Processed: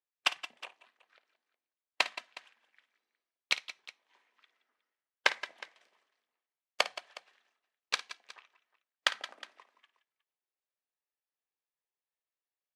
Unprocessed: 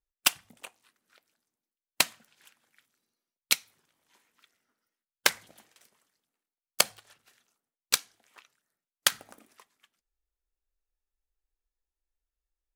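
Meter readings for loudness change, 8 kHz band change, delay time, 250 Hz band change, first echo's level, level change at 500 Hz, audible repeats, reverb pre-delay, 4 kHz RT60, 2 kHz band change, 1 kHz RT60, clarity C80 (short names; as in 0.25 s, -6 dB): -6.5 dB, -15.5 dB, 54 ms, -10.0 dB, -15.0 dB, -2.0 dB, 3, none, none, -1.0 dB, none, none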